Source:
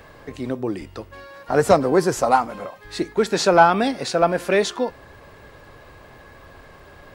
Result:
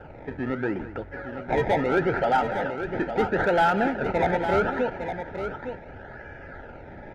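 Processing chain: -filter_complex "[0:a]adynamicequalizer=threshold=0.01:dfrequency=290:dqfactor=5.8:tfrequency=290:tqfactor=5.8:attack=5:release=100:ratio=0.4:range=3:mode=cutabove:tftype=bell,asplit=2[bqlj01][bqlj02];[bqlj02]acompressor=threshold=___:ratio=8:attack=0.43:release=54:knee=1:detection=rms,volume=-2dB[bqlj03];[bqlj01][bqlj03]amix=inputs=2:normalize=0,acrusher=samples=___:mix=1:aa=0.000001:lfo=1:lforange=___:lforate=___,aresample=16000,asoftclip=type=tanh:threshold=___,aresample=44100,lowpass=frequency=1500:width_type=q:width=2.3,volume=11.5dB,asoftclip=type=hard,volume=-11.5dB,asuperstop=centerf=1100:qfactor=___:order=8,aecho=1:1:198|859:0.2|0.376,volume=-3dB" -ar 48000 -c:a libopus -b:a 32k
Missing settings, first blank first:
-28dB, 21, 21, 0.75, -14.5dB, 3.2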